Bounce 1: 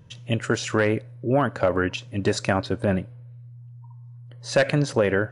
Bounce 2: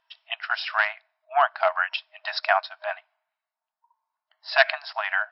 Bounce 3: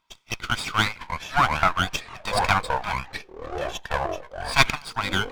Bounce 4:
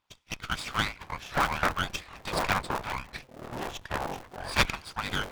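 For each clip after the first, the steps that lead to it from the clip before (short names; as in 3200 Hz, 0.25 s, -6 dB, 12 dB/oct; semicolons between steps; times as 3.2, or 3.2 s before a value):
FFT band-pass 620–5500 Hz; upward expander 1.5:1, over -47 dBFS; gain +7.5 dB
minimum comb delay 0.86 ms; echoes that change speed 0.395 s, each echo -6 st, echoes 3, each echo -6 dB; gain +2.5 dB
cycle switcher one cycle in 3, inverted; gain -6.5 dB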